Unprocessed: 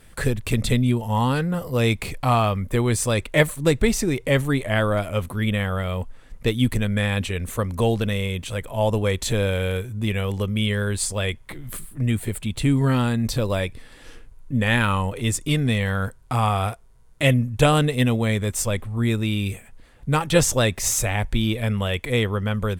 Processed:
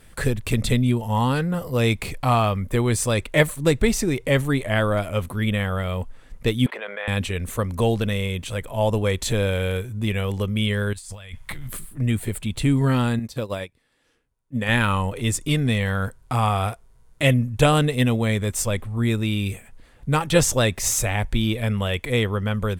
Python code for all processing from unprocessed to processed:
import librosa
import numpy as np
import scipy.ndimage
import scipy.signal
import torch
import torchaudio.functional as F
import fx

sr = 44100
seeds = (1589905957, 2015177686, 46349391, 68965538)

y = fx.chain(x, sr, fx.highpass(hz=550.0, slope=24),
    fx.air_absorb(metres=470.0),
    fx.env_flatten(amount_pct=70), at=(6.66, 7.08))
y = fx.chain(y, sr, fx.peak_eq(hz=350.0, db=-13.5, octaves=1.3),
    fx.over_compress(threshold_db=-36.0, ratio=-1.0), at=(10.93, 11.68))
y = fx.chain(y, sr, fx.highpass(hz=130.0, slope=6),
    fx.upward_expand(threshold_db=-33.0, expansion=2.5), at=(13.19, 14.69))